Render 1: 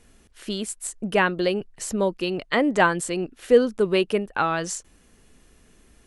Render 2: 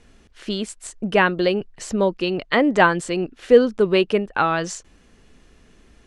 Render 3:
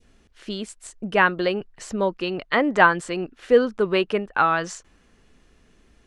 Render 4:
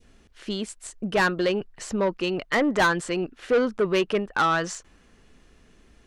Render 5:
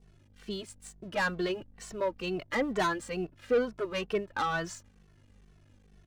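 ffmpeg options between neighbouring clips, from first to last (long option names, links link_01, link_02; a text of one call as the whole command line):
ffmpeg -i in.wav -af "lowpass=5800,volume=3.5dB" out.wav
ffmpeg -i in.wav -af "adynamicequalizer=threshold=0.0282:dfrequency=1300:dqfactor=0.82:tfrequency=1300:tqfactor=0.82:attack=5:release=100:ratio=0.375:range=3.5:mode=boostabove:tftype=bell,volume=-5dB" out.wav
ffmpeg -i in.wav -af "asoftclip=type=tanh:threshold=-17.5dB,volume=1.5dB" out.wav
ffmpeg -i in.wav -filter_complex "[0:a]aeval=exprs='val(0)+0.00501*(sin(2*PI*50*n/s)+sin(2*PI*2*50*n/s)/2+sin(2*PI*3*50*n/s)/3+sin(2*PI*4*50*n/s)/4+sin(2*PI*5*50*n/s)/5)':channel_layout=same,aeval=exprs='sgn(val(0))*max(abs(val(0))-0.00282,0)':channel_layout=same,asplit=2[link_01][link_02];[link_02]adelay=2.2,afreqshift=-2.2[link_03];[link_01][link_03]amix=inputs=2:normalize=1,volume=-4.5dB" out.wav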